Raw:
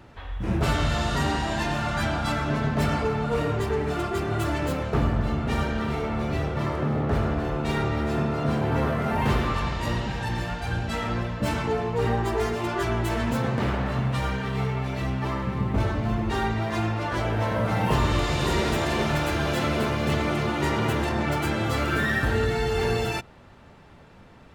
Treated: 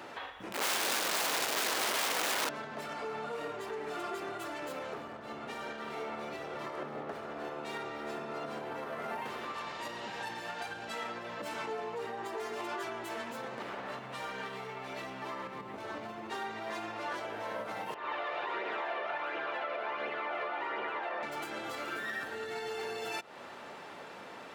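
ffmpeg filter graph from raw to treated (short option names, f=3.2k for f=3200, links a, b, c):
-filter_complex "[0:a]asettb=1/sr,asplit=3[a][b][c];[a]atrim=end=0.524[d];[b]atrim=start=0.52:end=2.49,asetpts=PTS-STARTPTS,afade=t=in:d=0.004:c=qsin,afade=t=out:st=1.966:d=0.004:c=qsin,highpass=79,asubboost=boost=10.5:cutoff=230,aeval=exprs='(mod(11.2*val(0)+1,2)-1)/11.2':c=same[e];[c]atrim=start=2.486[f];[d][e]acrossfade=d=0.004:c1=hsin:c2=qsin[g];[g][f]acrossfade=d=0.004:c1=qsin:c2=hsin,asettb=1/sr,asplit=3[h][i][j];[h]atrim=end=17.944[k];[i]atrim=start=17.94:end=21.23,asetpts=PTS-STARTPTS,afade=t=in:d=0.004:c=qsin,afade=t=out:st=3.286:d=0.004:c=qsin,acrossover=split=380 3800:gain=0.112 1 0.0708[l][m][n];[l][m][n]amix=inputs=3:normalize=0,acrossover=split=2800[o][p];[p]acompressor=threshold=-53dB:ratio=4:attack=1:release=60[q];[o][q]amix=inputs=2:normalize=0,flanger=delay=0.3:depth=1.5:regen=45:speed=1.4:shape=triangular[r];[j]atrim=start=21.226[s];[k][r]acrossfade=d=0.004:c1=hsin:c2=qsin[t];[t][s]acrossfade=d=0.004:c1=qsin:c2=hsin,acompressor=threshold=-34dB:ratio=6,alimiter=level_in=10dB:limit=-24dB:level=0:latency=1:release=245,volume=-10dB,highpass=410,volume=7.5dB"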